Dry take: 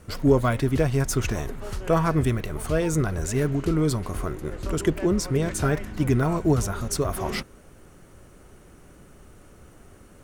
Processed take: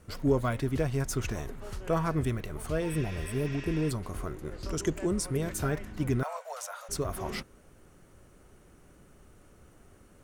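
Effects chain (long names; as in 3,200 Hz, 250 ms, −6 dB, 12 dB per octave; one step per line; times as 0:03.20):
0:02.90–0:03.88: healed spectral selection 1,000–7,900 Hz before
0:04.54–0:05.63: parametric band 4,400 Hz → 15,000 Hz +13.5 dB 0.35 octaves
0:06.23–0:06.89: Butterworth high-pass 510 Hz 96 dB per octave
level −7 dB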